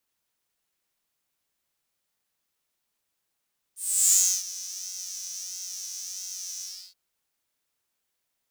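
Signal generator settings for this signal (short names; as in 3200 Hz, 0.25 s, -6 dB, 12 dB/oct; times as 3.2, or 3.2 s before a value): synth patch with pulse-width modulation F#3, oscillator 2 square, interval +7 st, oscillator 2 level -16.5 dB, noise -14.5 dB, filter highpass, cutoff 4500 Hz, Q 8, filter envelope 1 oct, filter decay 0.64 s, attack 0.36 s, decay 0.31 s, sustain -19 dB, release 0.32 s, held 2.86 s, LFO 1.5 Hz, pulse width 36%, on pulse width 5%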